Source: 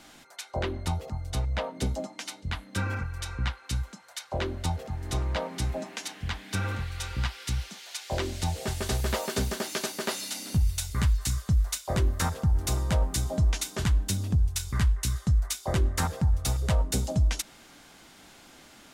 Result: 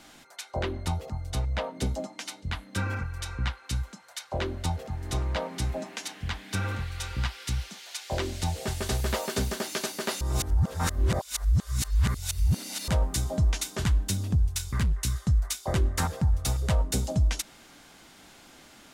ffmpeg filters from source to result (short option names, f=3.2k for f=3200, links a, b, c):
-filter_complex "[0:a]asettb=1/sr,asplit=3[a][b][c];[a]atrim=end=14.474[d];[b]atrim=start=14.47:end=15.03,asetpts=PTS-STARTPTS,afade=t=in:d=0.004:c=qsin,afade=t=out:st=0.556:d=0.004:c=qsin,asoftclip=type=hard:threshold=-21dB[e];[c]atrim=start=15.026[f];[d][e]acrossfade=d=0.004:c1=hsin:c2=qsin[g];[g][f]acrossfade=d=0.004:c1=qsin:c2=hsin,asplit=3[h][i][j];[h]atrim=end=10.212[k];[i]atrim=start=10.208:end=12.882,asetpts=PTS-STARTPTS,areverse[l];[j]atrim=start=12.878[m];[k][l]acrossfade=d=0.004:c1=hsin:c2=hsin[n];[n][m]acrossfade=d=0.004:c1=hsin:c2=hsin"